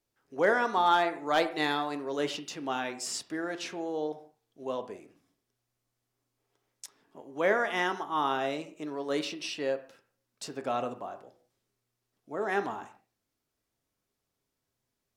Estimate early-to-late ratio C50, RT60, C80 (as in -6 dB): 13.0 dB, not exponential, 16.0 dB